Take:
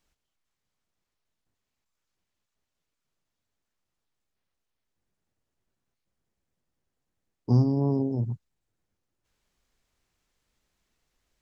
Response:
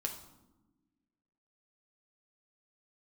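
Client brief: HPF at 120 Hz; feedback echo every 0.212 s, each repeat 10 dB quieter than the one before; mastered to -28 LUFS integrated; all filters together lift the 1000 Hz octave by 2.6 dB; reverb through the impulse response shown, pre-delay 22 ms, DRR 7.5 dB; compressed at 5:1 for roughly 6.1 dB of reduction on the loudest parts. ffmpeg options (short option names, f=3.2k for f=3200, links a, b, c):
-filter_complex "[0:a]highpass=120,equalizer=f=1k:t=o:g=3.5,acompressor=threshold=-24dB:ratio=5,aecho=1:1:212|424|636|848:0.316|0.101|0.0324|0.0104,asplit=2[a][b];[1:a]atrim=start_sample=2205,adelay=22[c];[b][c]afir=irnorm=-1:irlink=0,volume=-8dB[d];[a][d]amix=inputs=2:normalize=0"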